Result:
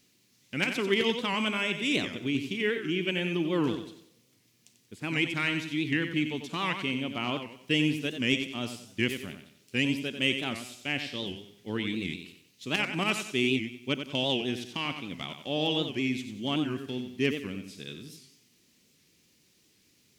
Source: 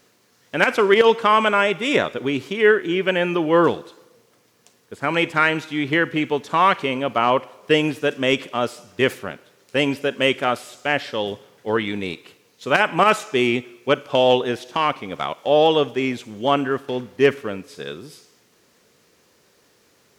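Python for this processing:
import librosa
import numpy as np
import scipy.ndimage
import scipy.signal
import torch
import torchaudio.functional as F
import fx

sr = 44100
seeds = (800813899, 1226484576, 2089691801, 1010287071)

y = fx.band_shelf(x, sr, hz=840.0, db=-13.5, octaves=2.3)
y = fx.echo_feedback(y, sr, ms=92, feedback_pct=36, wet_db=-8.5)
y = fx.record_warp(y, sr, rpm=78.0, depth_cents=160.0)
y = y * librosa.db_to_amplitude(-5.0)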